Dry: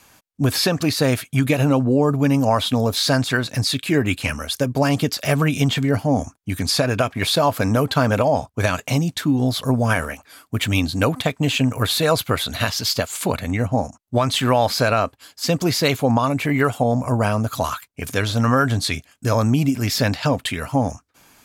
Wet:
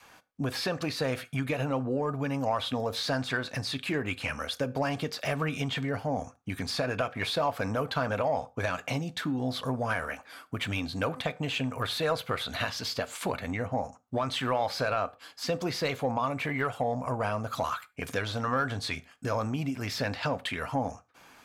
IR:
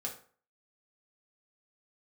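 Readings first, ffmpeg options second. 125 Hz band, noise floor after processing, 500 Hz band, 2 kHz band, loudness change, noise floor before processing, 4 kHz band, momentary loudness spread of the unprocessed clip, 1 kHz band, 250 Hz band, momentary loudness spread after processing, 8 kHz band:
-14.0 dB, -59 dBFS, -10.0 dB, -8.5 dB, -11.0 dB, -60 dBFS, -11.0 dB, 6 LU, -8.5 dB, -13.5 dB, 5 LU, -15.5 dB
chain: -filter_complex "[0:a]bandreject=f=7k:w=28,adynamicequalizer=threshold=0.0251:dfrequency=280:dqfactor=1.7:tfrequency=280:tqfactor=1.7:attack=5:release=100:ratio=0.375:range=2:mode=cutabove:tftype=bell,acompressor=threshold=-29dB:ratio=2,asplit=2[a][b];[b]highpass=f=720:p=1,volume=9dB,asoftclip=type=tanh:threshold=-13dB[c];[a][c]amix=inputs=2:normalize=0,lowpass=f=1.9k:p=1,volume=-6dB,asplit=2[d][e];[1:a]atrim=start_sample=2205,atrim=end_sample=6174[f];[e][f]afir=irnorm=-1:irlink=0,volume=-10.5dB[g];[d][g]amix=inputs=2:normalize=0,volume=-4dB"

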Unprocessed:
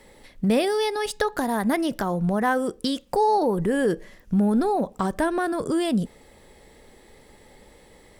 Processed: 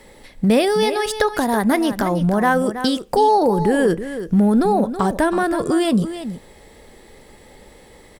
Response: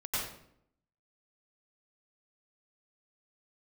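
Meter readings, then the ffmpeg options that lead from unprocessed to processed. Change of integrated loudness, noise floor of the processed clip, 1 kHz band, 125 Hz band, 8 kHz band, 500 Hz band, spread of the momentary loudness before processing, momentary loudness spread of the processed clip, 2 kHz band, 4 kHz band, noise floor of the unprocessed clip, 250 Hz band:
+6.0 dB, -47 dBFS, +6.0 dB, +6.0 dB, +6.0 dB, +6.0 dB, 6 LU, 6 LU, +6.0 dB, +6.0 dB, -53 dBFS, +6.0 dB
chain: -filter_complex "[0:a]asplit=2[a][b];[b]aecho=0:1:325:0.282[c];[a][c]amix=inputs=2:normalize=0,volume=5.5dB"

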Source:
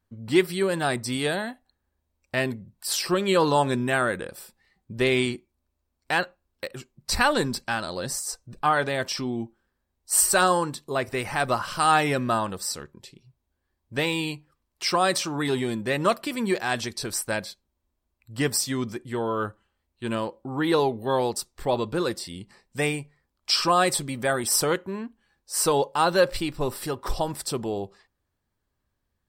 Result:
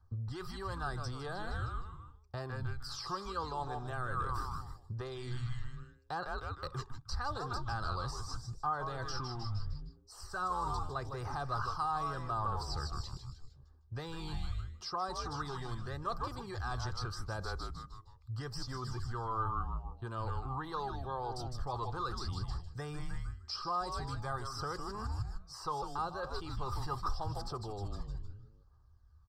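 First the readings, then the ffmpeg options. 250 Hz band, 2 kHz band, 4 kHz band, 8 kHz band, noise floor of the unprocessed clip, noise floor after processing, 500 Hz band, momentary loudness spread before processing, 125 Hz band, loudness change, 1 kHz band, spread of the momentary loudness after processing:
-18.5 dB, -17.0 dB, -15.5 dB, -24.5 dB, -79 dBFS, -60 dBFS, -18.5 dB, 14 LU, -4.5 dB, -14.0 dB, -10.5 dB, 8 LU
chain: -filter_complex "[0:a]equalizer=f=75:t=o:w=0.3:g=8.5,asplit=6[a][b][c][d][e][f];[b]adelay=154,afreqshift=-130,volume=-9.5dB[g];[c]adelay=308,afreqshift=-260,volume=-17dB[h];[d]adelay=462,afreqshift=-390,volume=-24.6dB[i];[e]adelay=616,afreqshift=-520,volume=-32.1dB[j];[f]adelay=770,afreqshift=-650,volume=-39.6dB[k];[a][g][h][i][j][k]amix=inputs=6:normalize=0,acrossover=split=310[l][m];[l]alimiter=level_in=2.5dB:limit=-24dB:level=0:latency=1,volume=-2.5dB[n];[n][m]amix=inputs=2:normalize=0,aphaser=in_gain=1:out_gain=1:delay=1.1:decay=0.37:speed=0.8:type=triangular,areverse,acompressor=threshold=-33dB:ratio=5,areverse,aecho=1:1:2.5:0.33,acrossover=split=730|4000[o][p][q];[o]acompressor=threshold=-40dB:ratio=4[r];[p]acompressor=threshold=-40dB:ratio=4[s];[q]acompressor=threshold=-46dB:ratio=4[t];[r][s][t]amix=inputs=3:normalize=0,firequalizer=gain_entry='entry(110,0);entry(240,-15);entry(1200,0);entry(2200,-26);entry(4900,-6);entry(8700,-23)':delay=0.05:min_phase=1,volume=8dB"

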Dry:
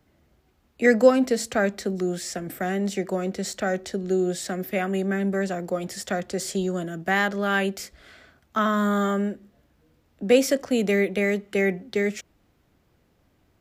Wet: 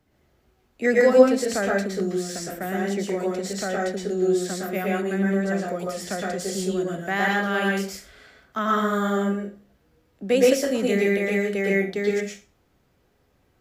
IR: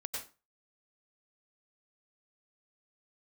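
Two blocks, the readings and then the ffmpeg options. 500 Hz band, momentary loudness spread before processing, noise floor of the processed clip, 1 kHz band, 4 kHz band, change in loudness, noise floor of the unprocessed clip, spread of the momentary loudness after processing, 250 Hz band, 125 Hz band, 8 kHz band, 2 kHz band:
+2.0 dB, 10 LU, -65 dBFS, +1.0 dB, +0.5 dB, +1.0 dB, -65 dBFS, 11 LU, +0.5 dB, +0.5 dB, +0.5 dB, +1.0 dB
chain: -filter_complex "[1:a]atrim=start_sample=2205,asetrate=37044,aresample=44100[a];[0:a][a]afir=irnorm=-1:irlink=0,volume=-1dB"

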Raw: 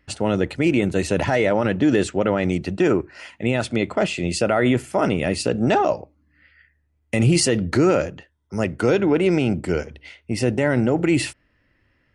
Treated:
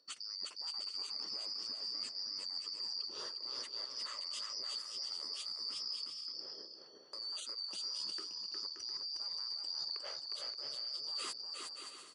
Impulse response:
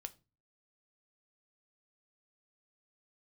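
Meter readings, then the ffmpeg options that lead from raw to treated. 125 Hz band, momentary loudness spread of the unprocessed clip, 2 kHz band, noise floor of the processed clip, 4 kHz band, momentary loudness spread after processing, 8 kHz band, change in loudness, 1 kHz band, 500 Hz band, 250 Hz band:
under -40 dB, 8 LU, -29.0 dB, -56 dBFS, -3.0 dB, 4 LU, -17.0 dB, -19.0 dB, -27.5 dB, -38.5 dB, under -40 dB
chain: -af "afftfilt=real='real(if(lt(b,272),68*(eq(floor(b/68),0)*1+eq(floor(b/68),1)*2+eq(floor(b/68),2)*3+eq(floor(b/68),3)*0)+mod(b,68),b),0)':imag='imag(if(lt(b,272),68*(eq(floor(b/68),0)*1+eq(floor(b/68),1)*2+eq(floor(b/68),2)*3+eq(floor(b/68),3)*0)+mod(b,68),b),0)':win_size=2048:overlap=0.75,highshelf=f=2.7k:g=7.5,bandreject=f=710:w=12,alimiter=limit=-14dB:level=0:latency=1:release=427,areverse,acompressor=threshold=-36dB:ratio=20,areverse,highpass=200,lowpass=8k,aecho=1:1:360|576|705.6|783.4|830:0.631|0.398|0.251|0.158|0.1,volume=-3.5dB"

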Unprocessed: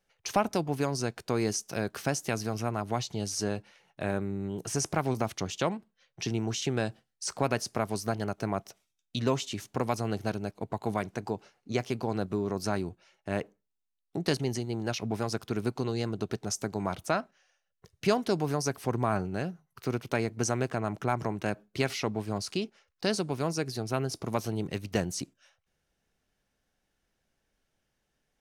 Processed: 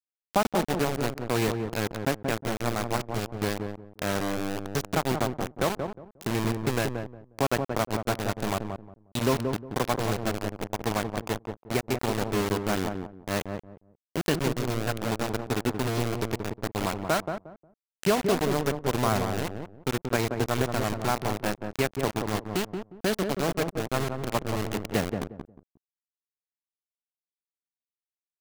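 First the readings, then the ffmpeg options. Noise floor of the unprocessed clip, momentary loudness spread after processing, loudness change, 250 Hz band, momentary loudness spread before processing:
-81 dBFS, 7 LU, +3.0 dB, +2.5 dB, 6 LU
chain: -filter_complex "[0:a]lowpass=3.2k,acrusher=bits=4:mix=0:aa=0.000001,asplit=2[a][b];[b]adelay=179,lowpass=f=800:p=1,volume=-4dB,asplit=2[c][d];[d]adelay=179,lowpass=f=800:p=1,volume=0.25,asplit=2[e][f];[f]adelay=179,lowpass=f=800:p=1,volume=0.25[g];[a][c][e][g]amix=inputs=4:normalize=0,volume=2dB"

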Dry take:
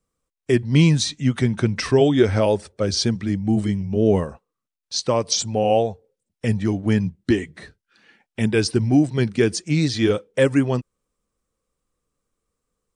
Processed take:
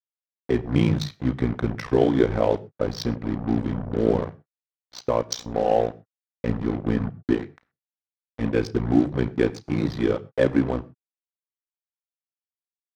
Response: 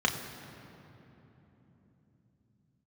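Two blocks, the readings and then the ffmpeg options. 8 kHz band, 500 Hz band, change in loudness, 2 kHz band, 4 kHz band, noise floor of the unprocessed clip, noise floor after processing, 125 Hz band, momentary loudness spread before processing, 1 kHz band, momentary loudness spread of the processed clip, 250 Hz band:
-12.5 dB, -3.0 dB, -4.0 dB, -6.0 dB, -11.0 dB, -84 dBFS, under -85 dBFS, -6.0 dB, 8 LU, -1.5 dB, 8 LU, -3.5 dB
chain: -filter_complex "[0:a]tremolo=f=59:d=0.947,acrusher=bits=4:mix=0:aa=0.5,adynamicsmooth=sensitivity=1:basefreq=1.8k,asplit=2[a][b];[1:a]atrim=start_sample=2205,afade=t=out:st=0.18:d=0.01,atrim=end_sample=8379[c];[b][c]afir=irnorm=-1:irlink=0,volume=-19.5dB[d];[a][d]amix=inputs=2:normalize=0"

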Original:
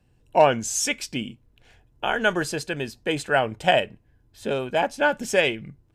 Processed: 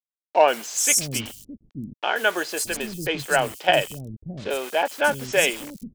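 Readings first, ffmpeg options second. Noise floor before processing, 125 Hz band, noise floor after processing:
-62 dBFS, -1.0 dB, under -85 dBFS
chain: -filter_complex "[0:a]aemphasis=mode=production:type=50kf,acrusher=bits=5:mix=0:aa=0.000001,acrossover=split=280|5000[a][b][c];[c]adelay=130[d];[a]adelay=620[e];[e][b][d]amix=inputs=3:normalize=0"

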